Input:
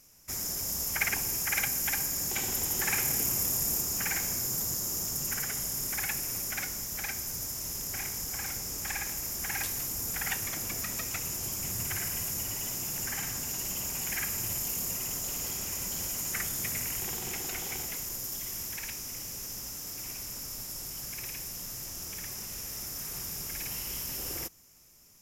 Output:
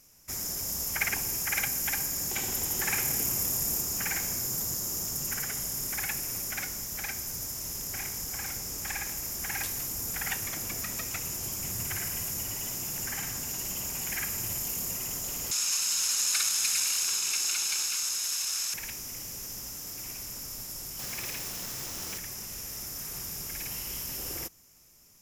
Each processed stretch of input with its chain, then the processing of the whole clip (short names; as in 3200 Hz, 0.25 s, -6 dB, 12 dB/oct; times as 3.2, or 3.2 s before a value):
15.51–18.74 minimum comb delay 0.77 ms + weighting filter ITU-R 468
20.99–22.18 half-waves squared off + low shelf 110 Hz -8 dB
whole clip: dry